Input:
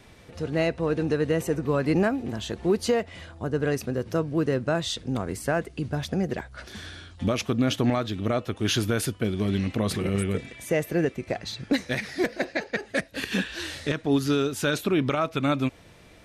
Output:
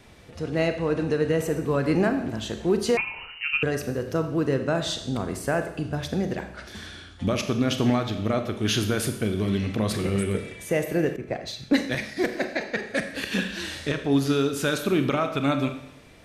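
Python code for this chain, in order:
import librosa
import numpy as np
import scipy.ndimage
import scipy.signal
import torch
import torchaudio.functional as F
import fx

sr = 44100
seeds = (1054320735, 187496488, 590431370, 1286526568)

y = fx.rev_schroeder(x, sr, rt60_s=0.82, comb_ms=29, drr_db=7.0)
y = fx.freq_invert(y, sr, carrier_hz=2900, at=(2.97, 3.63))
y = fx.band_widen(y, sr, depth_pct=70, at=(11.16, 12.17))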